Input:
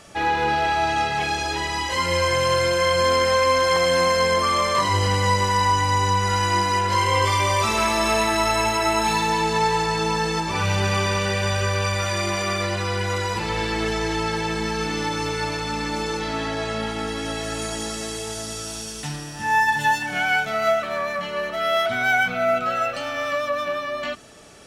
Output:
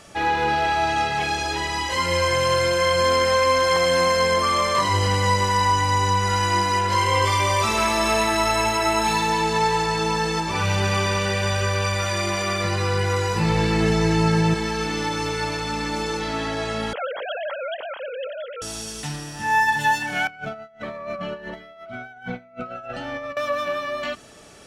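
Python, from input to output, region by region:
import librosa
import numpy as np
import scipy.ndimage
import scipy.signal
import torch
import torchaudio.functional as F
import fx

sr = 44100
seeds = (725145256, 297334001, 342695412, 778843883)

y = fx.chain(x, sr, fx.peak_eq(hz=150.0, db=14.0, octaves=0.55),
    fx.notch(hz=3300.0, q=8.3),
    fx.doubler(ms=18.0, db=-6.0), at=(12.64, 14.54))
y = fx.chain(y, sr, fx.sine_speech(),
    fx.lowpass(hz=1800.0, slope=6), at=(16.93, 18.62))
y = fx.chain(y, sr, fx.lowpass(hz=1000.0, slope=6),
    fx.over_compress(threshold_db=-31.0, ratio=-0.5),
    fx.notch_cascade(direction='rising', hz=1.3), at=(20.27, 23.37))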